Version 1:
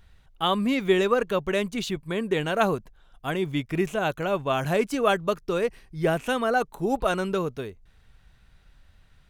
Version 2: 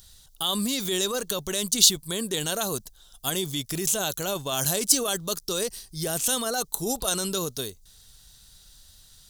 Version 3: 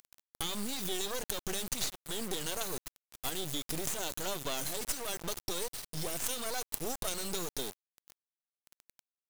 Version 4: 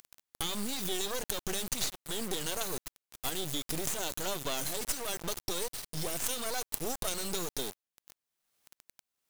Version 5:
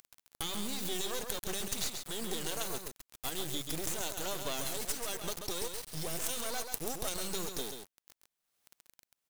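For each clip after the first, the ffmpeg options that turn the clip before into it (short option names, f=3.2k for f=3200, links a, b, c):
-af "alimiter=limit=-20.5dB:level=0:latency=1:release=18,aexciter=amount=11.5:drive=6.5:freq=3.6k,volume=-1.5dB"
-af "acompressor=threshold=-31dB:ratio=10,acrusher=bits=4:dc=4:mix=0:aa=0.000001,volume=2.5dB"
-af "acompressor=mode=upward:threshold=-49dB:ratio=2.5,volume=1.5dB"
-af "aecho=1:1:135:0.473,volume=-3dB"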